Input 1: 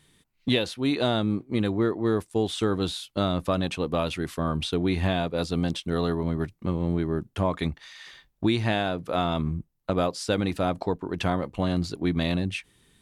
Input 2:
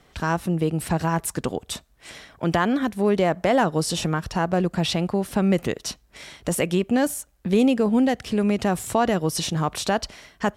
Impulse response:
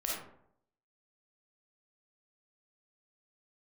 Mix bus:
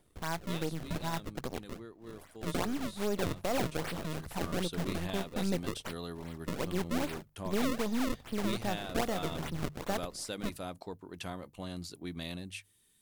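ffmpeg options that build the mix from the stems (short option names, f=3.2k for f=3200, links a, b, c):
-filter_complex "[0:a]aemphasis=mode=production:type=75fm,volume=-15dB,afade=t=in:st=4.23:d=0.26:silence=0.375837[a];[1:a]aeval=exprs='if(lt(val(0),0),0.251*val(0),val(0))':c=same,acrusher=samples=32:mix=1:aa=0.000001:lfo=1:lforange=51.2:lforate=2.5,acontrast=39,volume=-14dB[b];[a][b]amix=inputs=2:normalize=0,bandreject=f=50:t=h:w=6,bandreject=f=100:t=h:w=6,bandreject=f=150:t=h:w=6"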